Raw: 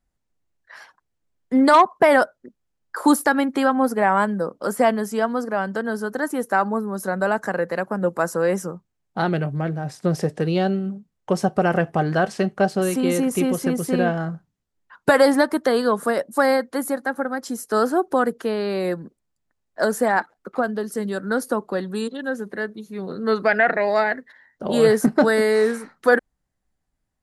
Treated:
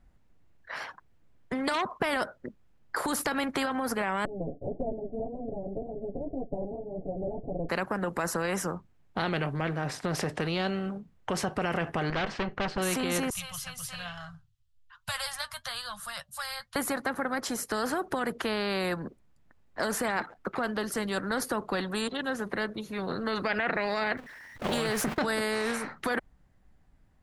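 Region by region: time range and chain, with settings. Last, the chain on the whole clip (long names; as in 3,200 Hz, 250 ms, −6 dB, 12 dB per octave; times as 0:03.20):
0:04.25–0:07.69: lower of the sound and its delayed copy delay 7.1 ms + Butterworth low-pass 670 Hz 72 dB per octave + flanger 1.8 Hz, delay 5 ms, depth 8.2 ms, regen −20%
0:12.10–0:12.78: tube saturation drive 23 dB, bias 0.65 + high-frequency loss of the air 130 metres
0:13.30–0:16.76: elliptic band-stop filter 100–1,100 Hz, stop band 80 dB + flat-topped bell 1,400 Hz −13 dB + flanger 1.1 Hz, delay 4.4 ms, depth 4 ms, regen +48%
0:24.17–0:25.19: converter with a step at zero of −32 dBFS + noise gate −29 dBFS, range −21 dB
whole clip: bass and treble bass +4 dB, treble −11 dB; brickwall limiter −15 dBFS; every bin compressed towards the loudest bin 2 to 1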